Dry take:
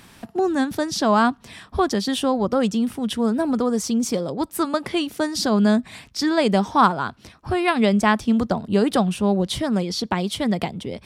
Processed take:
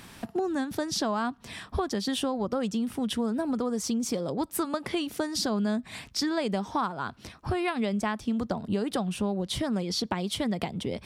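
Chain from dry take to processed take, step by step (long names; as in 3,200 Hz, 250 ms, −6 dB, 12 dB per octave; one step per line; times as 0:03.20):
downward compressor 6 to 1, threshold −26 dBFS, peak gain reduction 15 dB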